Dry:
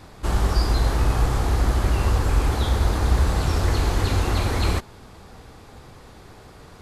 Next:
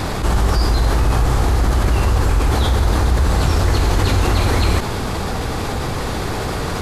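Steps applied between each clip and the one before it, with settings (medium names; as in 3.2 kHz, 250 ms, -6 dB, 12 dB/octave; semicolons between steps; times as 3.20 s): level flattener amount 70%; trim +1.5 dB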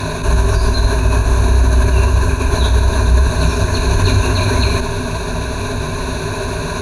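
rippled EQ curve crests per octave 1.5, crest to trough 16 dB; trim -1 dB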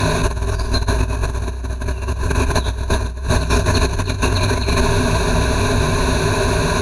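compressor with a negative ratio -16 dBFS, ratio -0.5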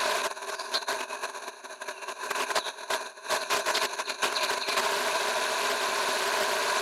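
Bessel high-pass 680 Hz, order 4; pre-echo 247 ms -23.5 dB; loudspeaker Doppler distortion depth 0.4 ms; trim -4.5 dB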